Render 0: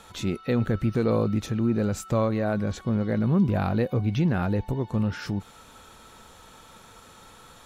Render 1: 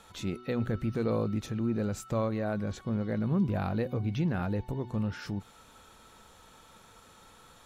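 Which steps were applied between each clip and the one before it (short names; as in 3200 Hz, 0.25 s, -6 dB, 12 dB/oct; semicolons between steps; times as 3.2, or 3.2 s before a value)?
de-hum 123.2 Hz, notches 3; gain -6 dB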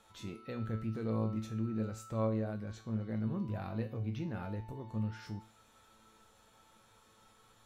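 resonator 110 Hz, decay 0.39 s, harmonics all, mix 80%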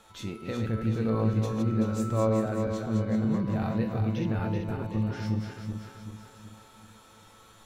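regenerating reverse delay 0.191 s, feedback 69%, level -4.5 dB; gain +7.5 dB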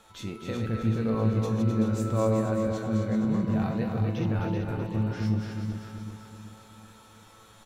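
echo 0.258 s -7 dB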